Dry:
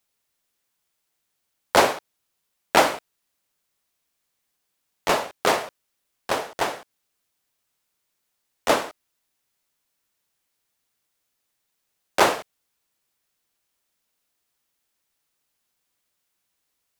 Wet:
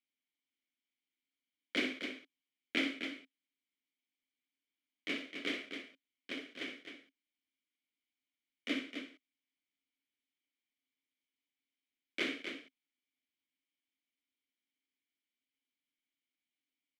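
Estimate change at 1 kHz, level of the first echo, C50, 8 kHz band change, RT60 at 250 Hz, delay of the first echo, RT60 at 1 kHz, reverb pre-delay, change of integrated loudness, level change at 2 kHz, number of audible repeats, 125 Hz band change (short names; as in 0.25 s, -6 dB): -32.0 dB, -10.0 dB, none, -25.5 dB, none, 62 ms, none, none, -16.5 dB, -12.0 dB, 2, -21.5 dB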